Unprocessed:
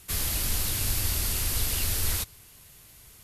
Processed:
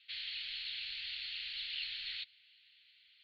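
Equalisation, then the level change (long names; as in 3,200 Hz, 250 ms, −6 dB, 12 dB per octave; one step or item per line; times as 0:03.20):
inverse Chebyshev high-pass filter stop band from 1,100 Hz, stop band 40 dB
Chebyshev low-pass with heavy ripple 4,400 Hz, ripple 3 dB
high-frequency loss of the air 79 metres
+1.0 dB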